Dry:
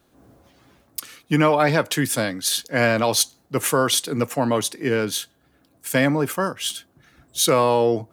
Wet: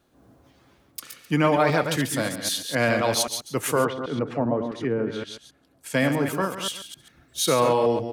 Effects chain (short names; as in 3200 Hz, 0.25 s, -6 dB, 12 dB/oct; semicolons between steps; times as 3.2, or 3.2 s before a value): reverse delay 0.131 s, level -7 dB; high shelf 7400 Hz -4 dB; 1.65–2.22 crackle 140/s -> 61/s -31 dBFS; on a send: echo 0.14 s -12 dB; 3.84–5.94 on the sum: treble ducked by the level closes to 760 Hz, closed at -16 dBFS; gain -3.5 dB